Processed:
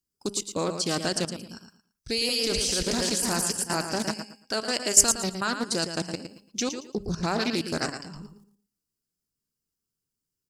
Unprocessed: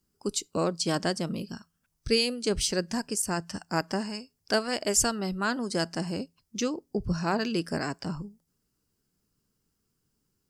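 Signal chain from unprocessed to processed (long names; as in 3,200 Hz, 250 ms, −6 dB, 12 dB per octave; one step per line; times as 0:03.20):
0:02.08–0:04.11: feedback delay that plays each chunk backwards 207 ms, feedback 52%, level −3.5 dB
hum removal 201.5 Hz, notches 19
noise gate −55 dBFS, range −10 dB
high-shelf EQ 2,900 Hz +9 dB
output level in coarse steps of 15 dB
repeating echo 113 ms, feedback 23%, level −8.5 dB
highs frequency-modulated by the lows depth 0.25 ms
level +3.5 dB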